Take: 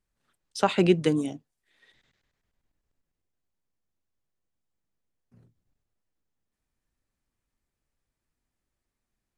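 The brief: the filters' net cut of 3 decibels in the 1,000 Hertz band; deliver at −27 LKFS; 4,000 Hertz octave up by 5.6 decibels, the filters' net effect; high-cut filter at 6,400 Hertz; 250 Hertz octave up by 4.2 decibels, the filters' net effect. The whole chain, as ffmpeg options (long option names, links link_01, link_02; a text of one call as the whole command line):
ffmpeg -i in.wav -af "lowpass=6400,equalizer=frequency=250:width_type=o:gain=7,equalizer=frequency=1000:width_type=o:gain=-5,equalizer=frequency=4000:width_type=o:gain=8.5,volume=-5dB" out.wav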